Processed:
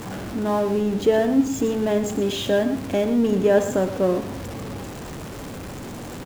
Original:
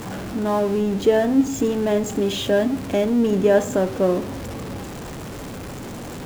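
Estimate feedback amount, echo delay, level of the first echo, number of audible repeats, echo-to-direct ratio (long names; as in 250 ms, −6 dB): repeats not evenly spaced, 119 ms, −11.5 dB, 1, −11.5 dB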